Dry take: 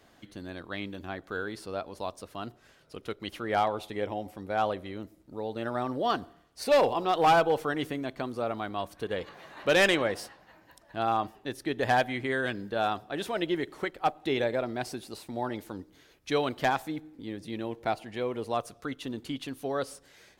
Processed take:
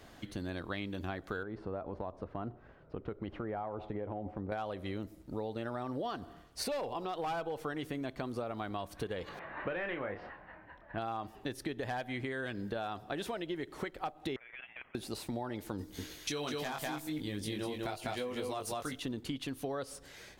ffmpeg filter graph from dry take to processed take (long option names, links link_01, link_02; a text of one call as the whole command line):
ffmpeg -i in.wav -filter_complex "[0:a]asettb=1/sr,asplit=3[link_01][link_02][link_03];[link_01]atrim=end=1.434[link_04];[link_02]atrim=start=1.43:end=4.52,asetpts=PTS-STARTPTS,afade=type=in:duration=0.004:curve=qsin,afade=type=out:start_time=3.086:duration=0.004:curve=qsin,lowpass=1200,acompressor=threshold=-37dB:ratio=3:attack=3.2:release=140:knee=1:detection=peak[link_05];[link_03]atrim=start=4.516[link_06];[link_04][link_05]acrossfade=duration=0.004:curve1=hsin:curve2=qsin[link_07];[link_07][link_06]acrossfade=duration=0.004:curve1=qsin:curve2=hsin,asettb=1/sr,asplit=3[link_08][link_09][link_10];[link_08]atrim=end=9.394[link_11];[link_09]atrim=start=9.39:end=10.98,asetpts=PTS-STARTPTS,afade=type=in:duration=0.004:curve=qsin,afade=type=out:start_time=1.586:duration=0.004:curve=qsin,lowpass=frequency=2100:width=0.5412,lowpass=frequency=2100:width=1.3066,tiltshelf=frequency=1400:gain=-3.5,asplit=2[link_12][link_13];[link_13]adelay=29,volume=-7dB[link_14];[link_12][link_14]amix=inputs=2:normalize=0,atrim=end_sample=70119[link_15];[link_10]atrim=start=10.976[link_16];[link_11][link_15]acrossfade=duration=0.004:curve1=hsin:curve2=qsin[link_17];[link_17][link_16]acrossfade=duration=0.004:curve1=qsin:curve2=hsin,asettb=1/sr,asplit=3[link_18][link_19][link_20];[link_18]atrim=end=14.364[link_21];[link_19]atrim=start=14.36:end=14.95,asetpts=PTS-STARTPTS,afade=type=in:duration=0.004:curve=qsin,afade=type=out:start_time=0.586:duration=0.004:curve=qsin,highpass=frequency=1500:width=0.5412,highpass=frequency=1500:width=1.3066,acompressor=threshold=-47dB:ratio=5:attack=3.2:release=140:knee=1:detection=peak,lowpass=frequency=3400:width_type=q:width=0.5098,lowpass=frequency=3400:width_type=q:width=0.6013,lowpass=frequency=3400:width_type=q:width=0.9,lowpass=frequency=3400:width_type=q:width=2.563,afreqshift=-4000[link_22];[link_20]atrim=start=14.946[link_23];[link_21][link_22]acrossfade=duration=0.004:curve1=hsin:curve2=qsin[link_24];[link_24][link_23]acrossfade=duration=0.004:curve1=qsin:curve2=hsin,asettb=1/sr,asplit=3[link_25][link_26][link_27];[link_25]atrim=end=15.784[link_28];[link_26]atrim=start=15.78:end=19,asetpts=PTS-STARTPTS,afade=type=in:duration=0.004:curve=qsin,afade=type=out:start_time=3.216:duration=0.004:curve=qsin,highshelf=frequency=3500:gain=12,asplit=2[link_29][link_30];[link_30]adelay=20,volume=-4dB[link_31];[link_29][link_31]amix=inputs=2:normalize=0,atrim=end_sample=142002,aecho=1:1:200:0.631,atrim=end_sample=142002[link_32];[link_27]atrim=start=18.996[link_33];[link_28][link_32]acrossfade=duration=0.004:curve1=hsin:curve2=qsin[link_34];[link_34][link_33]acrossfade=duration=0.004:curve1=qsin:curve2=hsin,lowshelf=frequency=100:gain=7.5,alimiter=limit=-23dB:level=0:latency=1:release=225,acompressor=threshold=-39dB:ratio=6,volume=4dB" out.wav